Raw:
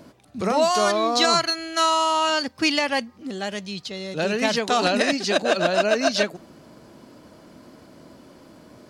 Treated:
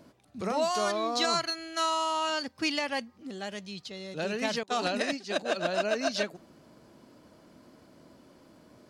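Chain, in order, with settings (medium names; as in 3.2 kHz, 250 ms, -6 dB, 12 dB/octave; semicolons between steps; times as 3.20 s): 4.63–5.65 s: expander -19 dBFS; trim -8.5 dB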